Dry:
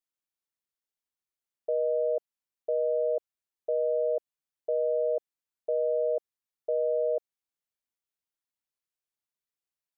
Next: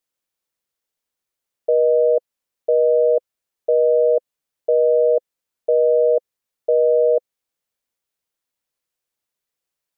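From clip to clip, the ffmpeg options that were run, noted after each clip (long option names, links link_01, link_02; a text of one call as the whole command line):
ffmpeg -i in.wav -af "equalizer=frequency=510:width_type=o:width=0.36:gain=5.5,volume=8.5dB" out.wav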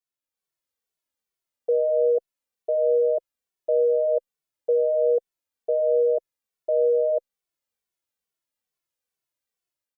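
ffmpeg -i in.wav -filter_complex "[0:a]dynaudnorm=framelen=160:gausssize=5:maxgain=6dB,asplit=2[link_01][link_02];[link_02]adelay=2.2,afreqshift=-2.3[link_03];[link_01][link_03]amix=inputs=2:normalize=1,volume=-7.5dB" out.wav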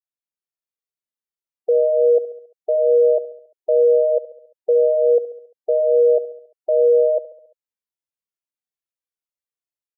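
ffmpeg -i in.wav -af "afftdn=noise_reduction=15:noise_floor=-37,aecho=1:1:69|138|207|276|345:0.158|0.0856|0.0462|0.025|0.0135,volume=5dB" out.wav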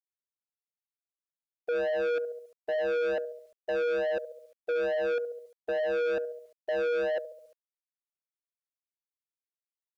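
ffmpeg -i in.wav -af "asoftclip=type=tanh:threshold=-21.5dB,acrusher=bits=10:mix=0:aa=0.000001,volume=-5dB" out.wav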